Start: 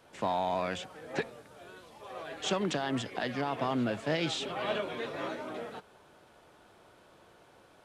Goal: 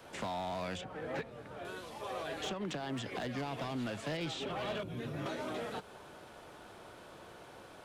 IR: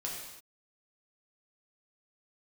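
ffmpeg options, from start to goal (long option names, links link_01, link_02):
-filter_complex "[0:a]asettb=1/sr,asplit=3[link_01][link_02][link_03];[link_01]atrim=end=2.494[link_04];[link_02]atrim=start=2.49:end=3.1,asetpts=PTS-STARTPTS,afade=type=in:duration=0.004:curve=qsin,afade=type=out:start_time=0.606:duration=0.004:curve=qsin,acompressor=threshold=-34dB:ratio=3[link_05];[link_03]atrim=start=3.096[link_06];[link_04][link_05]acrossfade=duration=0.004:curve1=hsin:curve2=qsin[link_07];[link_07][link_06]acrossfade=duration=0.004:curve1=qsin:curve2=hsin,asettb=1/sr,asplit=3[link_08][link_09][link_10];[link_08]atrim=end=4.834[link_11];[link_09]atrim=start=4.83:end=5.26,asetpts=PTS-STARTPTS,afade=type=in:duration=0.004:curve=qsin,afade=type=out:start_time=0.426:duration=0.004:curve=qsin,equalizer=frequency=125:width_type=o:width=1:gain=11,equalizer=frequency=500:width_type=o:width=1:gain=-9,equalizer=frequency=1000:width_type=o:width=1:gain=-11,equalizer=frequency=2000:width_type=o:width=1:gain=-9,equalizer=frequency=4000:width_type=o:width=1:gain=-11,equalizer=frequency=8000:width_type=o:width=1:gain=-7[link_12];[link_10]atrim=start=5.256[link_13];[link_11][link_12]acrossfade=duration=0.004:curve1=hsin:curve2=qsin[link_14];[link_14][link_13]acrossfade=duration=0.004:curve1=qsin:curve2=hsin,acrossover=split=150|840|3100[link_15][link_16][link_17][link_18];[link_15]acompressor=threshold=-52dB:ratio=4[link_19];[link_16]acompressor=threshold=-46dB:ratio=4[link_20];[link_17]acompressor=threshold=-52dB:ratio=4[link_21];[link_18]acompressor=threshold=-56dB:ratio=4[link_22];[link_19][link_20][link_21][link_22]amix=inputs=4:normalize=0,asettb=1/sr,asplit=3[link_23][link_24][link_25];[link_23]atrim=end=0.814[link_26];[link_24]atrim=start=0.81:end=1.65,asetpts=PTS-STARTPTS,afade=type=in:duration=0.004:curve=qsin,afade=type=out:start_time=0.836:duration=0.004:curve=qsin,bass=frequency=250:gain=2,treble=frequency=4000:gain=-13[link_27];[link_25]atrim=start=1.646[link_28];[link_26][link_27]acrossfade=duration=0.004:curve1=hsin:curve2=qsin[link_29];[link_29][link_28]acrossfade=duration=0.004:curve1=qsin:curve2=hsin,asoftclip=type=hard:threshold=-39dB,volume=6.5dB"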